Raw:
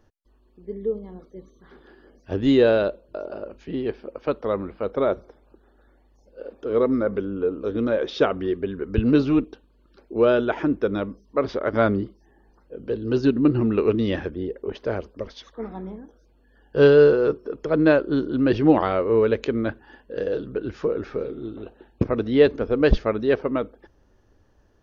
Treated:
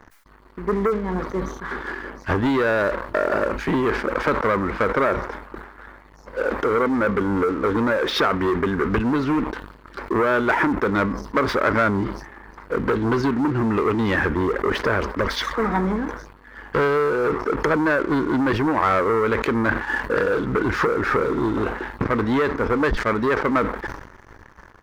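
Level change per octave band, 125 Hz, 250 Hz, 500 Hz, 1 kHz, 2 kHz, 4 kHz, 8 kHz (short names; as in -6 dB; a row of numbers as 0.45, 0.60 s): +2.0 dB, +0.5 dB, -1.0 dB, +9.5 dB, +9.5 dB, +5.0 dB, n/a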